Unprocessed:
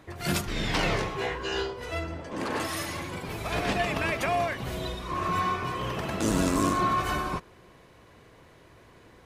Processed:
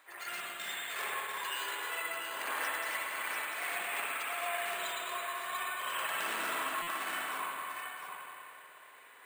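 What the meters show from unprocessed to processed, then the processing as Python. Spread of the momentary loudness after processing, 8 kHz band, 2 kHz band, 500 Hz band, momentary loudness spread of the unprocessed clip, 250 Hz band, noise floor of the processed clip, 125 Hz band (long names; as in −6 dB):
10 LU, −3.5 dB, −2.0 dB, −13.0 dB, 9 LU, −24.0 dB, −55 dBFS, below −30 dB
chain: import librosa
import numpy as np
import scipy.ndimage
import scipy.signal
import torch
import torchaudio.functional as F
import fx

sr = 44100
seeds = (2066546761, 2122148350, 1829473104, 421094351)

p1 = scipy.signal.sosfilt(scipy.signal.butter(2, 1400.0, 'highpass', fs=sr, output='sos'), x)
p2 = fx.dereverb_blind(p1, sr, rt60_s=0.94)
p3 = fx.high_shelf(p2, sr, hz=2600.0, db=-6.0)
p4 = fx.over_compress(p3, sr, threshold_db=-42.0, ratio=-1.0)
p5 = fx.step_gate(p4, sr, bpm=101, pattern='xxx.x.xx.xxxxxx', floor_db=-60.0, edge_ms=4.5)
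p6 = p5 + fx.echo_single(p5, sr, ms=694, db=-6.0, dry=0)
p7 = fx.rev_spring(p6, sr, rt60_s=2.6, pass_ms=(55, 60), chirp_ms=70, drr_db=-8.0)
p8 = np.repeat(scipy.signal.resample_poly(p7, 1, 4), 4)[:len(p7)]
p9 = fx.buffer_glitch(p8, sr, at_s=(6.82,), block=256, repeats=8)
y = F.gain(torch.from_numpy(p9), -2.0).numpy()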